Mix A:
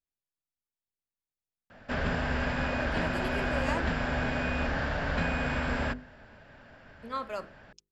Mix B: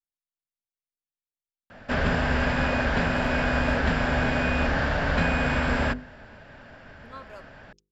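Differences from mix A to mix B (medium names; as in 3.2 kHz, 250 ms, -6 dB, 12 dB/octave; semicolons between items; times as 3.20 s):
speech -8.5 dB; background +6.0 dB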